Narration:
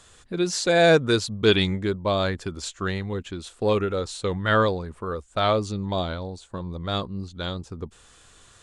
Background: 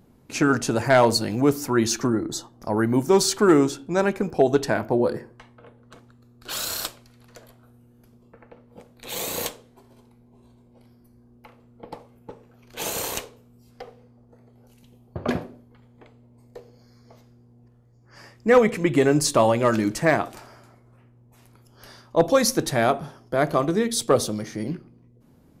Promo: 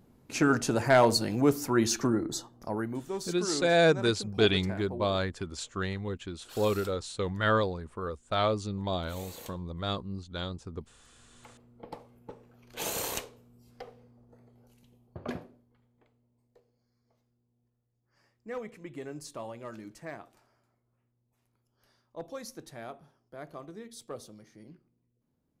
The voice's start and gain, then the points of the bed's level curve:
2.95 s, -5.5 dB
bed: 2.57 s -4.5 dB
3.06 s -18 dB
11.03 s -18 dB
11.49 s -5 dB
14.39 s -5 dB
16.72 s -22.5 dB

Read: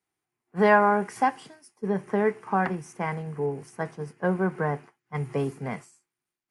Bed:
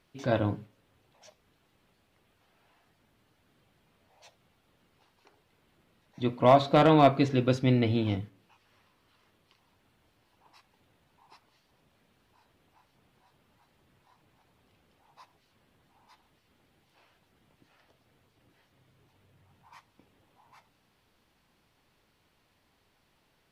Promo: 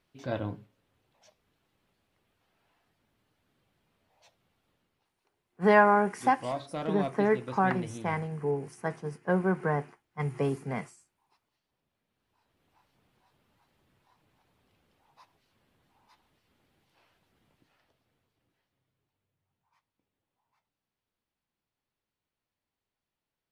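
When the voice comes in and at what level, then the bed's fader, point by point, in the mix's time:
5.05 s, -1.5 dB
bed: 4.71 s -6 dB
5.15 s -14.5 dB
12.04 s -14.5 dB
12.76 s -3.5 dB
17.48 s -3.5 dB
19.33 s -20.5 dB

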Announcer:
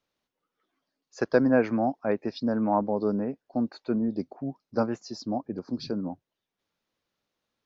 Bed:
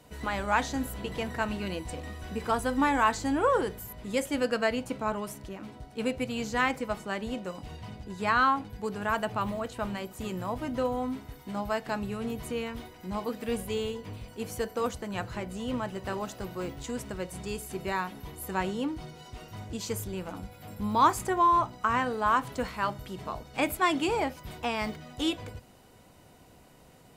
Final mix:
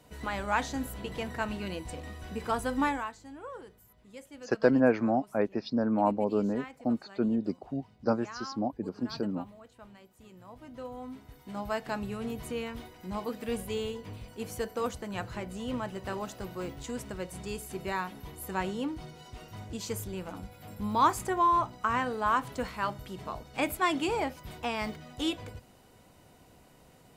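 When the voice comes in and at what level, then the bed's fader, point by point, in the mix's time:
3.30 s, -1.5 dB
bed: 2.88 s -2.5 dB
3.14 s -18.5 dB
10.31 s -18.5 dB
11.74 s -2 dB

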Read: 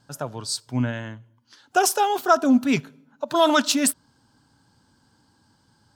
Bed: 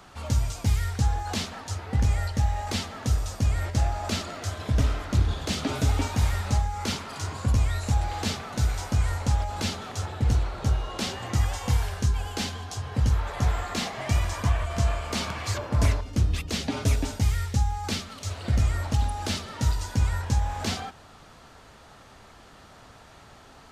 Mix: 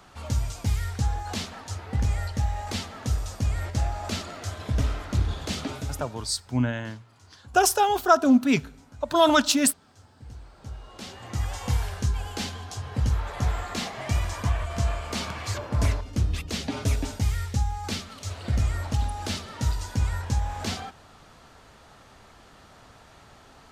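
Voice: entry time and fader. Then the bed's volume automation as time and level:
5.80 s, -0.5 dB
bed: 5.6 s -2 dB
6.36 s -23 dB
10.15 s -23 dB
11.62 s -1.5 dB

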